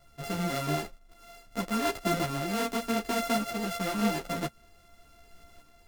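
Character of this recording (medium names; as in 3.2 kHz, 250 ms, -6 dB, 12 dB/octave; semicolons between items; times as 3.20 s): a buzz of ramps at a fixed pitch in blocks of 64 samples; tremolo saw up 0.89 Hz, depth 45%; a shimmering, thickened sound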